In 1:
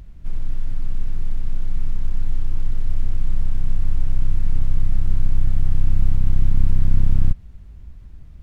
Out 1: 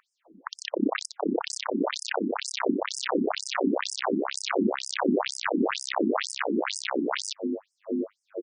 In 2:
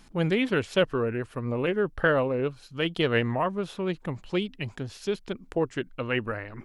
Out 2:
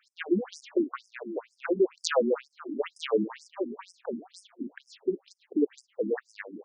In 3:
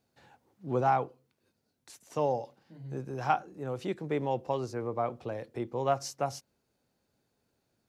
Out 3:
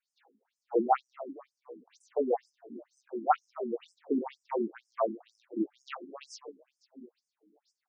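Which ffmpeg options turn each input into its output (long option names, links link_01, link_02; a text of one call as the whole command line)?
ffmpeg -i in.wav -filter_complex "[0:a]asplit=8[link_01][link_02][link_03][link_04][link_05][link_06][link_07][link_08];[link_02]adelay=266,afreqshift=-100,volume=-15.5dB[link_09];[link_03]adelay=532,afreqshift=-200,volume=-19.2dB[link_10];[link_04]adelay=798,afreqshift=-300,volume=-23dB[link_11];[link_05]adelay=1064,afreqshift=-400,volume=-26.7dB[link_12];[link_06]adelay=1330,afreqshift=-500,volume=-30.5dB[link_13];[link_07]adelay=1596,afreqshift=-600,volume=-34.2dB[link_14];[link_08]adelay=1862,afreqshift=-700,volume=-38dB[link_15];[link_01][link_09][link_10][link_11][link_12][link_13][link_14][link_15]amix=inputs=8:normalize=0,asplit=2[link_16][link_17];[link_17]adynamicsmooth=sensitivity=3.5:basefreq=730,volume=3dB[link_18];[link_16][link_18]amix=inputs=2:normalize=0,aeval=exprs='(mod(1.78*val(0)+1,2)-1)/1.78':channel_layout=same,afreqshift=-28,acontrast=60,afftfilt=real='re*between(b*sr/1024,260*pow(7100/260,0.5+0.5*sin(2*PI*2.1*pts/sr))/1.41,260*pow(7100/260,0.5+0.5*sin(2*PI*2.1*pts/sr))*1.41)':imag='im*between(b*sr/1024,260*pow(7100/260,0.5+0.5*sin(2*PI*2.1*pts/sr))/1.41,260*pow(7100/260,0.5+0.5*sin(2*PI*2.1*pts/sr))*1.41)':win_size=1024:overlap=0.75,volume=-7.5dB" out.wav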